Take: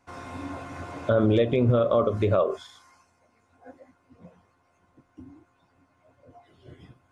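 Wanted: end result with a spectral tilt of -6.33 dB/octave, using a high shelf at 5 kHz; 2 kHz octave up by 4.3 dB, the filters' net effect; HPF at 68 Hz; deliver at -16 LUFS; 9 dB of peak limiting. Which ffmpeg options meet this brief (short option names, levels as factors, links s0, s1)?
-af "highpass=68,equalizer=f=2000:t=o:g=5.5,highshelf=f=5000:g=3,volume=4.73,alimiter=limit=0.562:level=0:latency=1"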